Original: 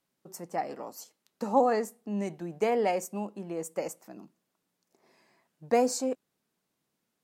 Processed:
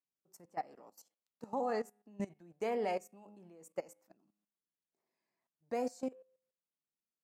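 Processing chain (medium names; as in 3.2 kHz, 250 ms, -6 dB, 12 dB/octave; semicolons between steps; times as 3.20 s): de-hum 103.6 Hz, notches 33; level held to a coarse grid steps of 15 dB; upward expansion 1.5:1, over -51 dBFS; trim -3.5 dB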